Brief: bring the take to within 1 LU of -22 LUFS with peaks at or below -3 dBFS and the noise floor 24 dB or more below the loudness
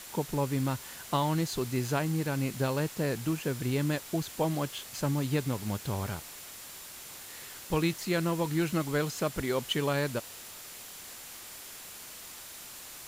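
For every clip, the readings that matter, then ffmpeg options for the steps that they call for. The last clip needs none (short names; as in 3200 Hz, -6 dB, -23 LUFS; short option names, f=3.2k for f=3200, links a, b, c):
steady tone 7200 Hz; tone level -56 dBFS; noise floor -46 dBFS; noise floor target -56 dBFS; loudness -31.5 LUFS; peak -15.0 dBFS; loudness target -22.0 LUFS
-> -af "bandreject=f=7.2k:w=30"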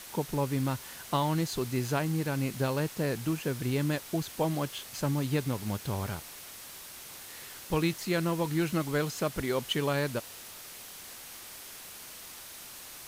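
steady tone none; noise floor -46 dBFS; noise floor target -56 dBFS
-> -af "afftdn=nr=10:nf=-46"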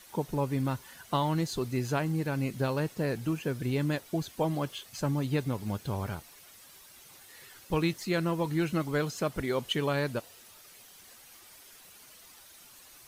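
noise floor -54 dBFS; noise floor target -56 dBFS
-> -af "afftdn=nr=6:nf=-54"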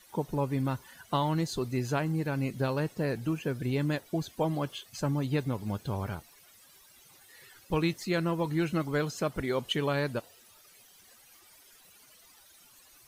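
noise floor -58 dBFS; loudness -31.5 LUFS; peak -15.5 dBFS; loudness target -22.0 LUFS
-> -af "volume=9.5dB"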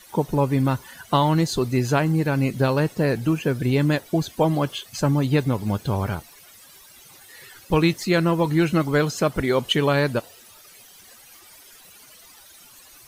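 loudness -22.0 LUFS; peak -6.0 dBFS; noise floor -49 dBFS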